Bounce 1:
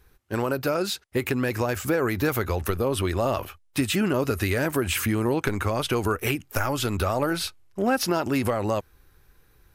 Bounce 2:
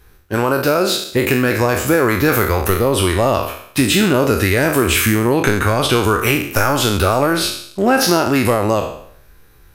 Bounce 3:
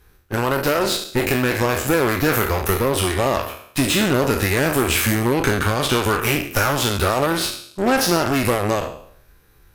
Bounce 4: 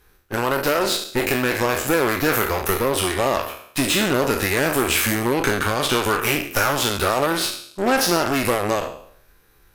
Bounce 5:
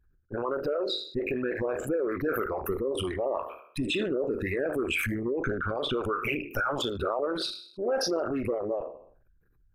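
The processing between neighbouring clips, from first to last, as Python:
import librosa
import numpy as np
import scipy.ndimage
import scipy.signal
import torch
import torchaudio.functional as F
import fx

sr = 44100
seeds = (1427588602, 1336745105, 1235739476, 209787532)

y1 = fx.spec_trails(x, sr, decay_s=0.64)
y1 = y1 * 10.0 ** (8.0 / 20.0)
y2 = fx.cheby_harmonics(y1, sr, harmonics=(8,), levels_db=(-18,), full_scale_db=-1.0)
y2 = y2 * 10.0 ** (-4.5 / 20.0)
y3 = fx.peak_eq(y2, sr, hz=78.0, db=-7.0, octaves=2.8)
y4 = fx.envelope_sharpen(y3, sr, power=3.0)
y4 = y4 * 10.0 ** (-9.0 / 20.0)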